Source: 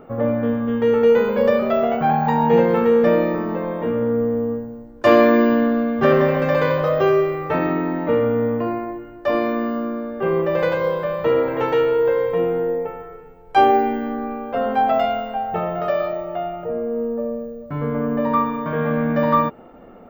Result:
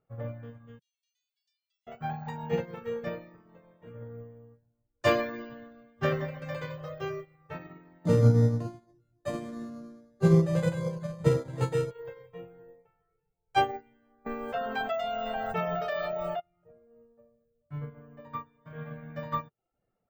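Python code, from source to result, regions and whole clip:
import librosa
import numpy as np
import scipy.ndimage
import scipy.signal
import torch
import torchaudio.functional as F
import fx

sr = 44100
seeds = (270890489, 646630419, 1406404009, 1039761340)

y = fx.chain(x, sr, fx.cheby2_highpass(hz=720.0, order=4, stop_db=80),
    fx.high_shelf(hz=9400.0, db=-7.0), at=(0.79, 1.87))
y = fx.chain(y, sr, fx.peak_eq(hz=180.0, db=13.5, octaves=1.6),
    fx.resample_linear(factor=8), at=(8.05, 11.91))
y = fx.chain(y, sr, fx.low_shelf(hz=230.0, db=-6.5),
    fx.comb(ms=4.5, depth=0.65),
    fx.env_flatten(amount_pct=100), at=(14.26, 16.4))
y = fx.graphic_eq(y, sr, hz=(125, 250, 500, 1000, 8000), db=(10, -11, -3, -5, 10))
y = fx.dereverb_blind(y, sr, rt60_s=0.55)
y = fx.upward_expand(y, sr, threshold_db=-34.0, expansion=2.5)
y = F.gain(torch.from_numpy(y), -1.5).numpy()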